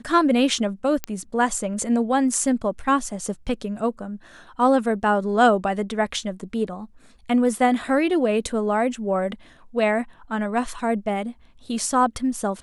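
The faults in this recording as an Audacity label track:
1.040000	1.040000	pop -10 dBFS

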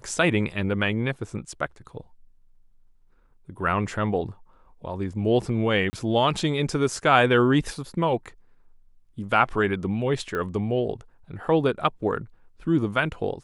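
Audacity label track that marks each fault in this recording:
5.900000	5.930000	gap 30 ms
10.350000	10.350000	pop -18 dBFS

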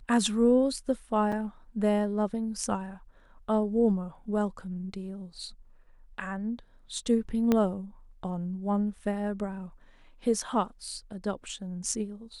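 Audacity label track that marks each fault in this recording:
1.320000	1.320000	gap 4.8 ms
7.520000	7.520000	pop -12 dBFS

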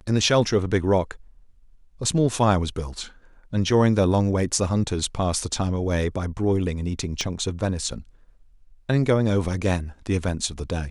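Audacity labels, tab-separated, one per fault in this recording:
7.210000	7.210000	pop -14 dBFS

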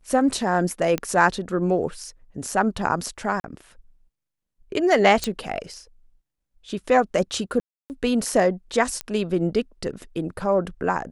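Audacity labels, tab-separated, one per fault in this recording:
0.980000	0.980000	pop -11 dBFS
3.400000	3.440000	gap 41 ms
5.240000	5.240000	pop -9 dBFS
7.600000	7.900000	gap 0.299 s
9.010000	9.010000	pop -11 dBFS

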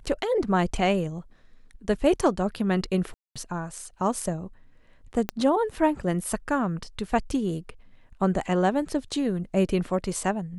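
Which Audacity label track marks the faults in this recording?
3.140000	3.360000	gap 0.216 s
5.290000	5.290000	pop -12 dBFS

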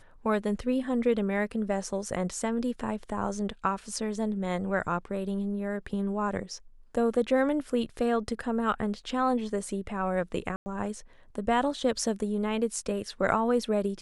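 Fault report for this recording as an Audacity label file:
10.560000	10.660000	gap 0.1 s

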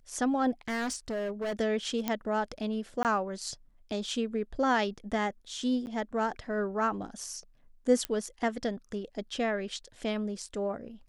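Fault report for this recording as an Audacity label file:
0.680000	1.530000	clipped -29.5 dBFS
2.080000	2.080000	pop -14 dBFS
3.030000	3.050000	gap 18 ms
5.860000	5.870000	gap 9.9 ms
8.050000	8.050000	pop -15 dBFS

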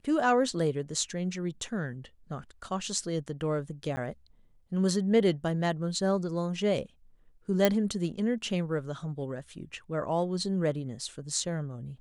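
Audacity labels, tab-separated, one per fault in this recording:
3.960000	3.970000	gap 10 ms
7.650000	7.650000	pop -8 dBFS

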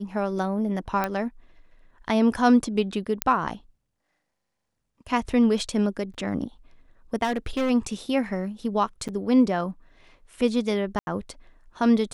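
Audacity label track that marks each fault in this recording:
1.040000	1.040000	pop -12 dBFS
3.220000	3.220000	pop -4 dBFS
6.140000	6.150000	gap 5.7 ms
7.230000	7.710000	clipped -21 dBFS
9.080000	9.090000	gap 7.3 ms
10.990000	11.070000	gap 80 ms

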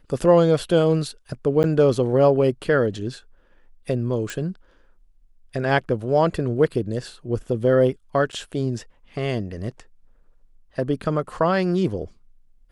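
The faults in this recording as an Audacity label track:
1.630000	1.640000	gap 9.2 ms
4.300000	4.300000	pop
8.320000	8.330000	gap 7.9 ms

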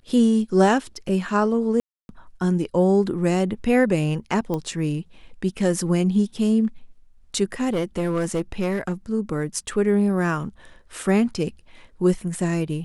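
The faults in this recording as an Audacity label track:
1.800000	2.090000	gap 0.291 s
4.540000	4.540000	pop -15 dBFS
7.690000	8.930000	clipped -19 dBFS

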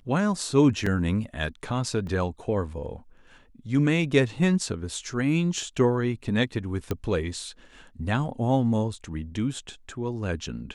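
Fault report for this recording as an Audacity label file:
0.860000	0.860000	gap 4.6 ms
2.070000	2.070000	gap 2.2 ms
6.910000	6.910000	pop -14 dBFS

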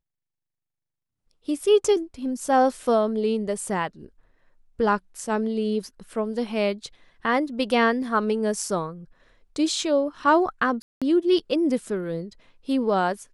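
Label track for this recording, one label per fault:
10.820000	11.020000	gap 0.196 s

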